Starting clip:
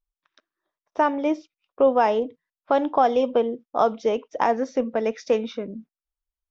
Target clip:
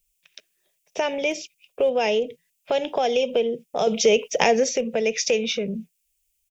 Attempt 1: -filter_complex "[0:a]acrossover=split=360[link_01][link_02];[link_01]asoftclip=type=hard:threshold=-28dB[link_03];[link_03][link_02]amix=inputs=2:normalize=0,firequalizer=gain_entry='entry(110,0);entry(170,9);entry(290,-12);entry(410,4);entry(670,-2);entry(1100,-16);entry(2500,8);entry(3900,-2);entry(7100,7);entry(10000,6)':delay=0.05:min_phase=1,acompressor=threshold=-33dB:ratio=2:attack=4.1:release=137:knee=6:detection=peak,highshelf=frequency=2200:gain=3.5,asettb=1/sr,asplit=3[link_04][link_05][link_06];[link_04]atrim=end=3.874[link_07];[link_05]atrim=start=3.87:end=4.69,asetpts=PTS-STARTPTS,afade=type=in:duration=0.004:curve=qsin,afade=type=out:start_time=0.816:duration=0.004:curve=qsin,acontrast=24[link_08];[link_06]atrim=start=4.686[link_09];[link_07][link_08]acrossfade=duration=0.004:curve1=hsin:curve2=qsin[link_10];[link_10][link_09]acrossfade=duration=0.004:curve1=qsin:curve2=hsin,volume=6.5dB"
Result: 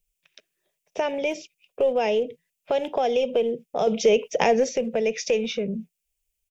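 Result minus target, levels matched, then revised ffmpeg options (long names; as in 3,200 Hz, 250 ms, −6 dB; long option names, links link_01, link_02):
hard clipping: distortion +18 dB; 4,000 Hz band −4.5 dB
-filter_complex "[0:a]acrossover=split=360[link_01][link_02];[link_01]asoftclip=type=hard:threshold=-22dB[link_03];[link_03][link_02]amix=inputs=2:normalize=0,firequalizer=gain_entry='entry(110,0);entry(170,9);entry(290,-12);entry(410,4);entry(670,-2);entry(1100,-16);entry(2500,8);entry(3900,-2);entry(7100,7);entry(10000,6)':delay=0.05:min_phase=1,acompressor=threshold=-33dB:ratio=2:attack=4.1:release=137:knee=6:detection=peak,highshelf=frequency=2200:gain=12,asettb=1/sr,asplit=3[link_04][link_05][link_06];[link_04]atrim=end=3.874[link_07];[link_05]atrim=start=3.87:end=4.69,asetpts=PTS-STARTPTS,afade=type=in:duration=0.004:curve=qsin,afade=type=out:start_time=0.816:duration=0.004:curve=qsin,acontrast=24[link_08];[link_06]atrim=start=4.686[link_09];[link_07][link_08]acrossfade=duration=0.004:curve1=hsin:curve2=qsin[link_10];[link_10][link_09]acrossfade=duration=0.004:curve1=qsin:curve2=hsin,volume=6.5dB"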